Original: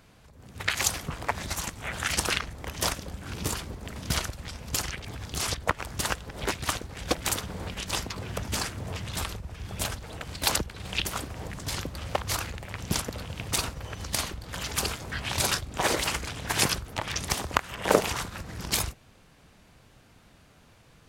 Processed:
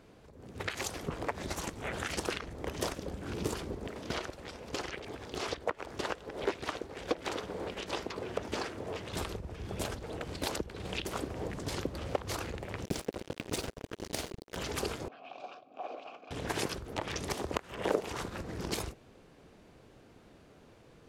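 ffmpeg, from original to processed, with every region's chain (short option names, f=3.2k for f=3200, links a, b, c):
-filter_complex "[0:a]asettb=1/sr,asplit=3[a][b][c];[a]atrim=end=3.874[d];[b]atrim=start=3.87:end=9.13,asetpts=PTS-STARTPTS,afade=t=in:d=0.004:c=qsin,afade=t=out:st=5.256:d=0.004:c=qsin,bass=f=250:g=-9,treble=f=4k:g=-2,acrossover=split=5900[e][f];[f]acompressor=threshold=-47dB:ratio=4:attack=1:release=60[g];[e][g]amix=inputs=2:normalize=0[h];[c]atrim=start=9.126[i];[d][h]acrossfade=d=0.004:c1=hsin:c2=qsin[j];[j][i]acrossfade=d=0.004:c1=qsin:c2=hsin,asettb=1/sr,asplit=3[k][l][m];[k]atrim=end=12.854[n];[l]atrim=start=12.85:end=14.57,asetpts=PTS-STARTPTS,afade=t=in:d=0.004:c=qsin,afade=t=out:st=1.716:d=0.004:c=qsin,equalizer=f=1.1k:w=2.5:g=-7,acrusher=bits=4:mix=0:aa=0.5[o];[m]atrim=start=14.566[p];[n][o]acrossfade=d=0.004:c1=hsin:c2=qsin[q];[q][p]acrossfade=d=0.004:c1=qsin:c2=hsin,asettb=1/sr,asplit=3[r][s][t];[r]atrim=end=15.084[u];[s]atrim=start=15.08:end=16.31,asetpts=PTS-STARTPTS,afade=t=in:d=0.004:c=qsin,afade=t=out:st=1.226:d=0.004:c=qsin,acompressor=threshold=-28dB:ratio=2.5:attack=3.2:release=140:knee=1:detection=peak,asplit=3[v][w][x];[v]bandpass=f=730:t=q:w=8,volume=0dB[y];[w]bandpass=f=1.09k:t=q:w=8,volume=-6dB[z];[x]bandpass=f=2.44k:t=q:w=8,volume=-9dB[aa];[y][z][aa]amix=inputs=3:normalize=0,highpass=f=130:w=0.5412,highpass=f=130:w=1.3066,equalizer=f=260:t=q:w=4:g=8,equalizer=f=380:t=q:w=4:g=-4,equalizer=f=1.1k:t=q:w=4:g=-3,lowpass=f=6.5k:w=0.5412,lowpass=f=6.5k:w=1.3066[ab];[t]atrim=start=16.306[ac];[u][ab]acrossfade=d=0.004:c1=hsin:c2=qsin[ad];[ad][ac]acrossfade=d=0.004:c1=qsin:c2=hsin,highshelf=f=10k:g=-7.5,acompressor=threshold=-29dB:ratio=6,equalizer=f=390:w=0.86:g=11.5,volume=-5dB"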